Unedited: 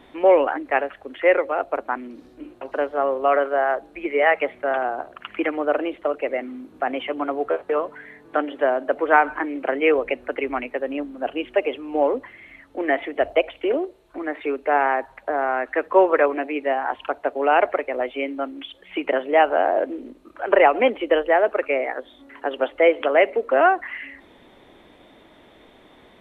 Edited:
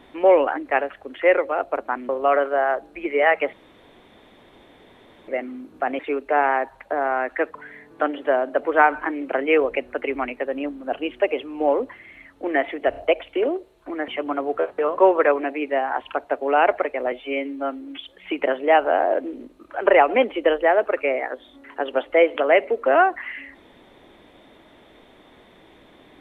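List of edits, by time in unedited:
0:02.09–0:03.09: remove
0:04.53–0:06.28: fill with room tone
0:06.99–0:07.89: swap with 0:14.36–0:15.92
0:13.24: stutter 0.03 s, 3 plays
0:18.06–0:18.63: time-stretch 1.5×

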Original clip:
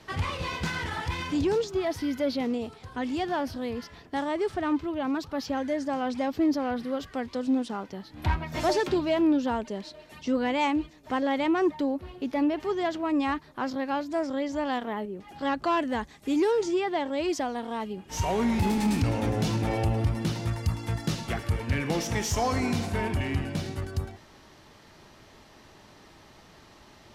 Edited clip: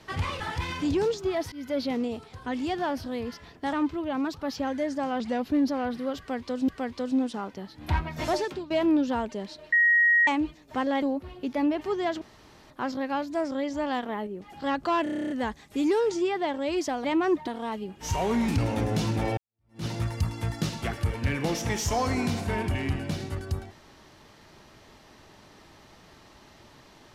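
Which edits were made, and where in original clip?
0:00.40–0:00.90: remove
0:02.02–0:02.39: fade in equal-power, from −21.5 dB
0:04.23–0:04.63: remove
0:06.10–0:06.54: play speed 91%
0:07.04–0:07.54: repeat, 2 plays
0:08.58–0:09.06: fade out, to −17.5 dB
0:10.08–0:10.63: beep over 1,890 Hz −17 dBFS
0:11.38–0:11.81: move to 0:17.56
0:13.00–0:13.49: fill with room tone
0:15.82: stutter 0.03 s, 10 plays
0:18.57–0:18.94: remove
0:19.83–0:20.31: fade in exponential

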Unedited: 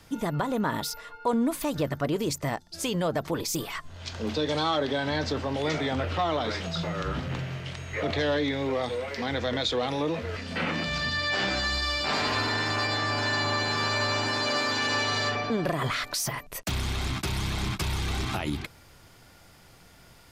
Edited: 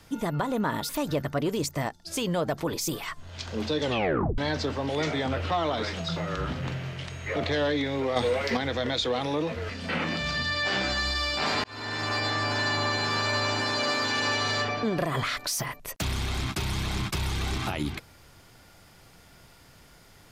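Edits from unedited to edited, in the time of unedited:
0:00.89–0:01.56: remove
0:04.49: tape stop 0.56 s
0:08.83–0:09.24: clip gain +6 dB
0:12.31–0:13.01: fade in equal-power

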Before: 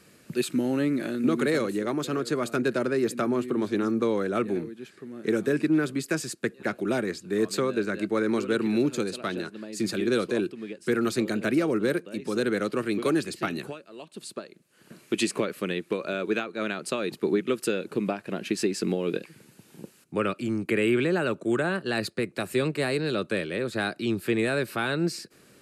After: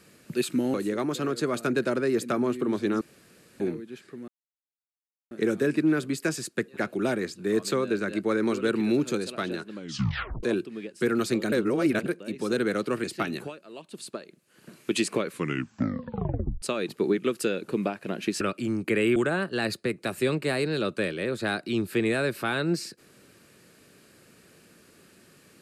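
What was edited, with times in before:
0:00.74–0:01.63: remove
0:03.90–0:04.49: fill with room tone
0:05.17: splice in silence 1.03 s
0:09.58: tape stop 0.71 s
0:11.38–0:11.92: reverse
0:12.90–0:13.27: remove
0:15.46: tape stop 1.39 s
0:18.64–0:20.22: remove
0:20.97–0:21.49: remove

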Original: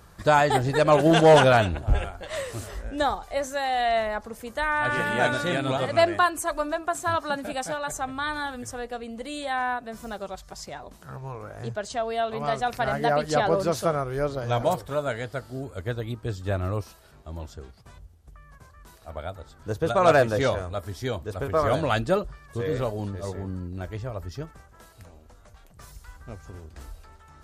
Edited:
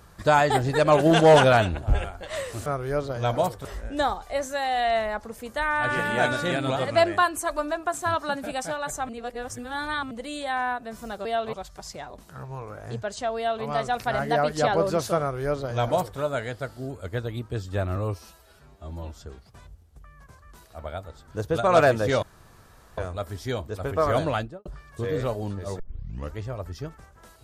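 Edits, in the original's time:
0:08.10–0:09.12: reverse
0:12.10–0:12.38: duplicate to 0:10.26
0:13.93–0:14.92: duplicate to 0:02.66
0:16.69–0:17.52: time-stretch 1.5×
0:20.54: splice in room tone 0.75 s
0:21.80–0:22.22: fade out and dull
0:23.36: tape start 0.57 s

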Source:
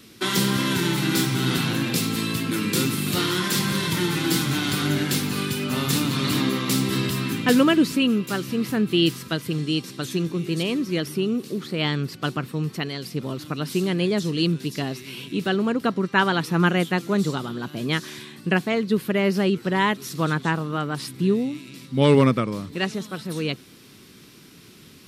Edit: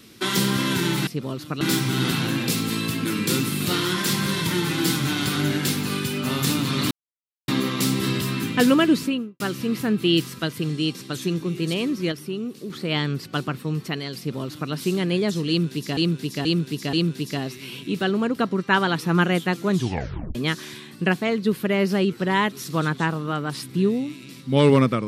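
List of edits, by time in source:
0:06.37: splice in silence 0.57 s
0:07.85–0:08.29: fade out and dull
0:11.01–0:11.59: clip gain −5.5 dB
0:13.07–0:13.61: duplicate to 0:01.07
0:14.38–0:14.86: repeat, 4 plays
0:17.16: tape stop 0.64 s

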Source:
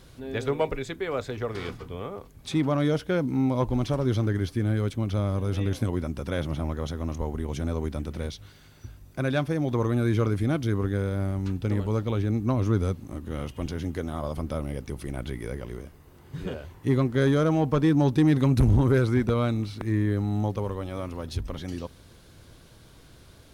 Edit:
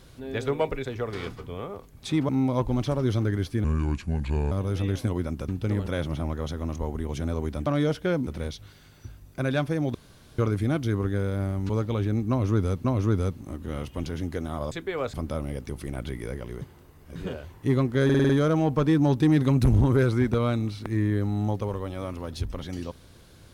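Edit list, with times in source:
0:00.85–0:01.27: move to 0:14.34
0:02.71–0:03.31: move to 0:08.06
0:04.66–0:05.29: play speed 72%
0:09.74–0:10.18: fill with room tone
0:11.49–0:11.87: move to 0:06.26
0:12.47–0:13.02: repeat, 2 plays
0:15.82–0:16.36: reverse
0:17.25: stutter 0.05 s, 6 plays

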